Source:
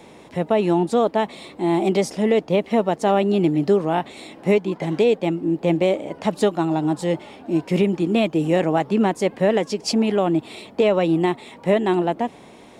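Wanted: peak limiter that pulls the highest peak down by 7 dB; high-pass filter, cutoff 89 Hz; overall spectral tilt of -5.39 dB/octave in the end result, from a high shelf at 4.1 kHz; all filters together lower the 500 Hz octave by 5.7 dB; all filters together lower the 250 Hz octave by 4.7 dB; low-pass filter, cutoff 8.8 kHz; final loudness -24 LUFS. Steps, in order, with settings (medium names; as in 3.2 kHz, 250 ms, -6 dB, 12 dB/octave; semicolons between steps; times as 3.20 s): high-pass 89 Hz; low-pass 8.8 kHz; peaking EQ 250 Hz -4.5 dB; peaking EQ 500 Hz -6 dB; treble shelf 4.1 kHz -3 dB; trim +4 dB; peak limiter -12.5 dBFS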